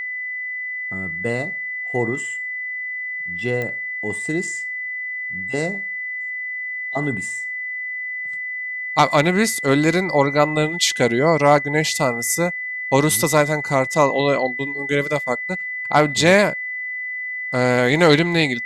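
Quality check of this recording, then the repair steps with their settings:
tone 2000 Hz -25 dBFS
3.62 pop -14 dBFS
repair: de-click; notch 2000 Hz, Q 30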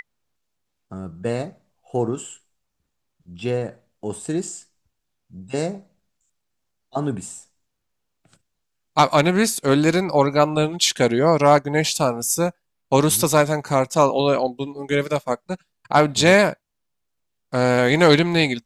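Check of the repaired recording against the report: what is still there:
none

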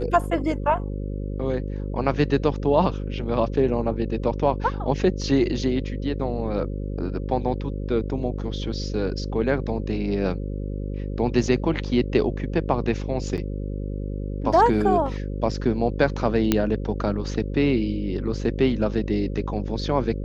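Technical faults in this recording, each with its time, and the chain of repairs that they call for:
buzz 50 Hz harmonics 11 -29 dBFS
13.37–13.38 gap 8.3 ms
16.52 pop -5 dBFS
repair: de-click; de-hum 50 Hz, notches 11; interpolate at 13.37, 8.3 ms

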